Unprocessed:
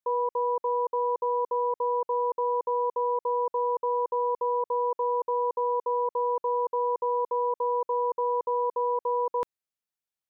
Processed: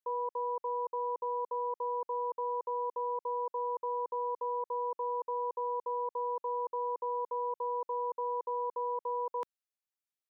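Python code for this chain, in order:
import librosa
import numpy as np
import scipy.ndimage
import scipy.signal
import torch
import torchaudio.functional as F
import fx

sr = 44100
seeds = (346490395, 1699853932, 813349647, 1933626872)

y = scipy.signal.sosfilt(scipy.signal.butter(2, 210.0, 'highpass', fs=sr, output='sos'), x)
y = fx.low_shelf(y, sr, hz=470.0, db=-6.5)
y = y * 10.0 ** (-5.5 / 20.0)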